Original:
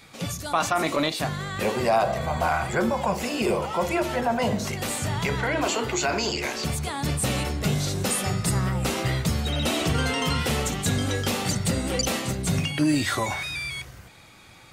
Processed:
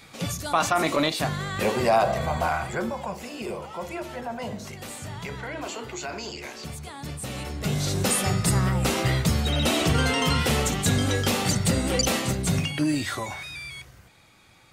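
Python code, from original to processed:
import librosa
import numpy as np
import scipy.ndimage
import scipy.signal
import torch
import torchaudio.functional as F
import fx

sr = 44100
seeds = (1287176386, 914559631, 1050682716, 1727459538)

y = fx.gain(x, sr, db=fx.line((2.24, 1.0), (3.21, -9.0), (7.28, -9.0), (7.96, 2.0), (12.33, 2.0), (13.3, -6.0)))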